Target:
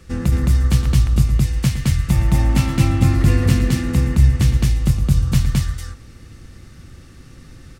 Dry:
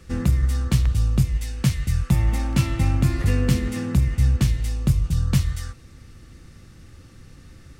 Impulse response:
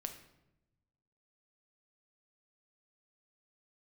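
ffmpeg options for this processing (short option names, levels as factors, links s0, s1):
-af "aecho=1:1:113.7|215.7:0.251|0.891,volume=1.26"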